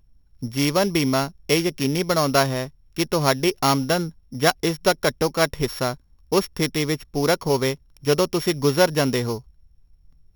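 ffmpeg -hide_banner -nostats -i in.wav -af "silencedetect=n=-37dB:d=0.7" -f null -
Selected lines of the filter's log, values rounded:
silence_start: 9.40
silence_end: 10.35 | silence_duration: 0.95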